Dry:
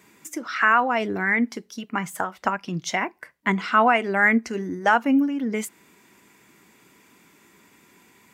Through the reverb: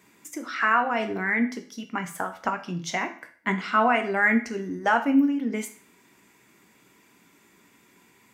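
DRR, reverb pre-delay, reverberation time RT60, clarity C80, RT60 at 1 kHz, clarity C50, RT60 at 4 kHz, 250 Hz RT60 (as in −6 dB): 6.0 dB, 12 ms, 0.45 s, 15.5 dB, 0.45 s, 11.5 dB, 0.45 s, 0.50 s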